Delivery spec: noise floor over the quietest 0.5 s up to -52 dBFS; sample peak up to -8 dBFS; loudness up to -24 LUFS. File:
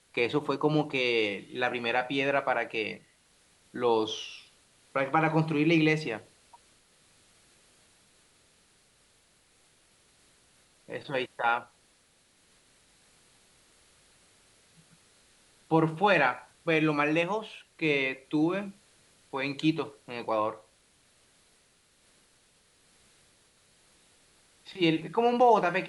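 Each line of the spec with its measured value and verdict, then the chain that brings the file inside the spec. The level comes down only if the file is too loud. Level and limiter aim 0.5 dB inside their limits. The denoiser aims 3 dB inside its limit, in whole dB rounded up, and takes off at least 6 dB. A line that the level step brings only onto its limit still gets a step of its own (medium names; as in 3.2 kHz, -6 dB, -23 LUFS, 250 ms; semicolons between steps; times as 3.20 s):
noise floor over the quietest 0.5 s -65 dBFS: pass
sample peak -11.0 dBFS: pass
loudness -28.0 LUFS: pass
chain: none needed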